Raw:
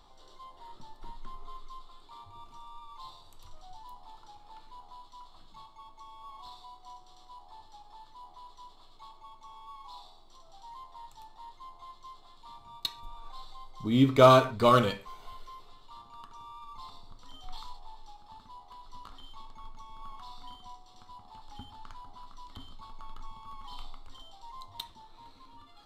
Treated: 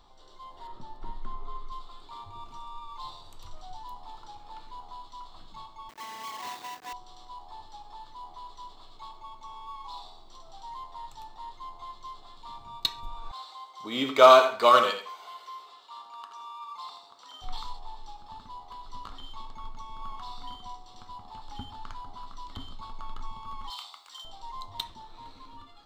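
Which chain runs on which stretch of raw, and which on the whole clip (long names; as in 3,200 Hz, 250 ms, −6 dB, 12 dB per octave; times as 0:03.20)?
0:00.67–0:01.72: high-shelf EQ 2,500 Hz −8.5 dB + flutter between parallel walls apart 11.5 metres, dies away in 0.32 s
0:05.89–0:06.93: each half-wave held at its own peak + high-pass filter 200 Hz
0:13.31–0:17.42: high-pass filter 590 Hz + repeating echo 82 ms, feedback 20%, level −9.5 dB
0:23.70–0:24.25: high-pass filter 980 Hz + high-shelf EQ 4,800 Hz +11 dB
whole clip: parametric band 11,000 Hz −8 dB 0.54 octaves; automatic gain control gain up to 6 dB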